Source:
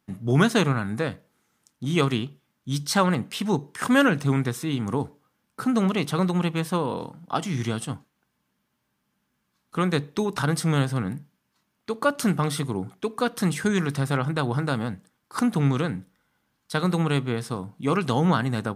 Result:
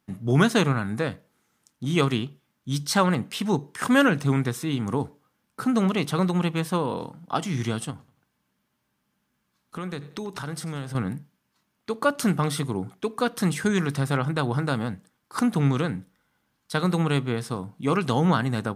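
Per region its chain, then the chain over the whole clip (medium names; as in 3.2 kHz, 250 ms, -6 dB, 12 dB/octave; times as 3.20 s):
7.90–10.95 s: compression 3:1, threshold -32 dBFS + feedback delay 91 ms, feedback 39%, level -18.5 dB
whole clip: none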